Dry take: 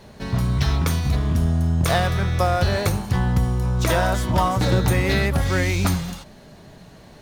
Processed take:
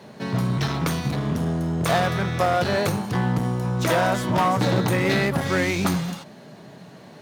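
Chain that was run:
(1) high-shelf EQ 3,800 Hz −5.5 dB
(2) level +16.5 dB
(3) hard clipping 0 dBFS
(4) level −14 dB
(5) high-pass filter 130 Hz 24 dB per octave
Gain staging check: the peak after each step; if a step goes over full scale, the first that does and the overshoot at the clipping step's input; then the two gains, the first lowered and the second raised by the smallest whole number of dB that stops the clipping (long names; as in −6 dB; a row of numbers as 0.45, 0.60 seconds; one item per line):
−6.5, +10.0, 0.0, −14.0, −7.0 dBFS
step 2, 10.0 dB
step 2 +6.5 dB, step 4 −4 dB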